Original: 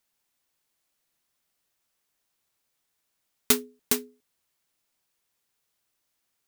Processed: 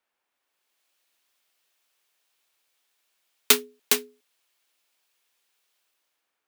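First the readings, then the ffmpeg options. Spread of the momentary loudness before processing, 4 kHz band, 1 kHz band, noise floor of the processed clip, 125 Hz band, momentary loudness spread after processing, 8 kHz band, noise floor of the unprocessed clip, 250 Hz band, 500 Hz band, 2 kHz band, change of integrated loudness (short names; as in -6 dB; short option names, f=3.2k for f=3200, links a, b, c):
4 LU, +7.0 dB, +4.5 dB, -82 dBFS, n/a, 4 LU, +3.5 dB, -78 dBFS, -4.5 dB, +2.0 dB, +6.5 dB, +3.5 dB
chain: -filter_complex "[0:a]acrossover=split=320 2800:gain=0.158 1 0.178[a][b][c];[a][b][c]amix=inputs=3:normalize=0,bandreject=f=2k:w=30,acrossover=split=210|2900[d][e][f];[f]dynaudnorm=f=140:g=9:m=14dB[g];[d][e][g]amix=inputs=3:normalize=0,volume=4dB"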